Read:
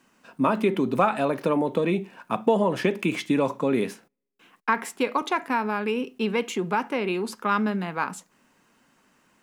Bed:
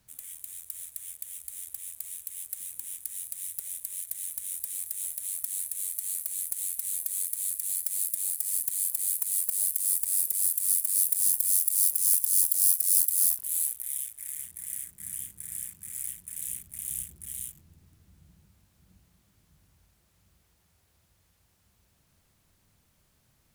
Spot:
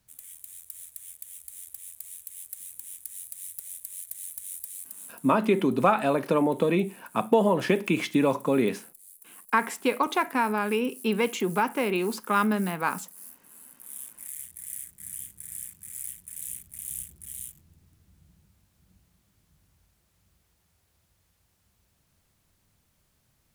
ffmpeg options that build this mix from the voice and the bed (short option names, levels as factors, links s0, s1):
-filter_complex "[0:a]adelay=4850,volume=1[s0];[1:a]volume=7.94,afade=t=out:st=4.57:d=0.78:silence=0.105925,afade=t=in:st=13.66:d=0.64:silence=0.0891251[s1];[s0][s1]amix=inputs=2:normalize=0"